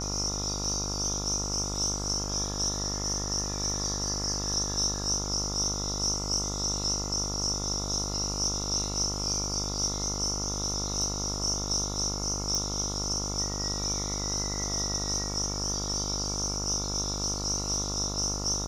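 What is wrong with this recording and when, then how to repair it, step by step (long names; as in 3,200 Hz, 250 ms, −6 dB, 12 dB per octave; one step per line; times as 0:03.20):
mains buzz 50 Hz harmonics 28 −35 dBFS
0:12.55: click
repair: click removal
hum removal 50 Hz, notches 28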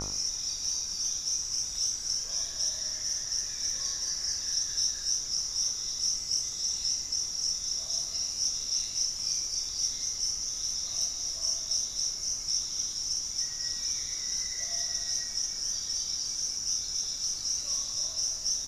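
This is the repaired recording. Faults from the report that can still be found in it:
none of them is left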